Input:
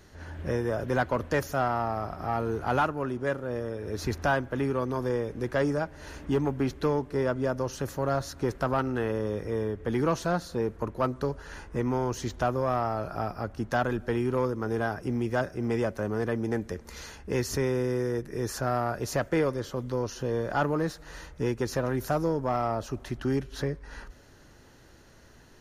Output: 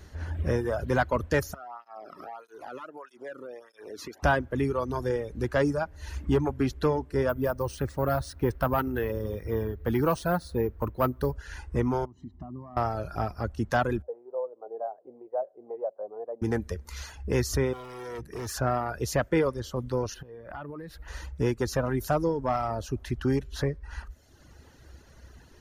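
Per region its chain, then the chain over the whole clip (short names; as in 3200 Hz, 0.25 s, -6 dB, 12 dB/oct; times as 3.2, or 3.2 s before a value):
1.54–4.23 HPF 260 Hz + compressor, threshold -36 dBFS + tape flanging out of phase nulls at 1.6 Hz, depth 1.4 ms
7.29–11.36 air absorption 54 m + careless resampling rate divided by 3×, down filtered, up hold
12.05–12.77 comb 1 ms, depth 82% + compressor 3:1, threshold -33 dBFS + band-pass 250 Hz, Q 1.4
14.02–16.42 Butterworth band-pass 620 Hz, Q 2.1 + air absorption 450 m
17.73–18.55 hard clip -32.5 dBFS + low shelf 62 Hz -10 dB
20.14–21.08 bell 6500 Hz -12.5 dB 1 oct + compressor 12:1, threshold -36 dBFS
whole clip: reverb removal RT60 1.2 s; bell 67 Hz +13.5 dB 0.74 oct; gain +2 dB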